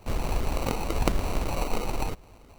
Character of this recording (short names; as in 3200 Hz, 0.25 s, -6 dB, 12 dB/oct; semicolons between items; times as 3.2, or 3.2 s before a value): phasing stages 12, 0.98 Hz, lowest notch 100–1600 Hz; aliases and images of a low sample rate 1700 Hz, jitter 0%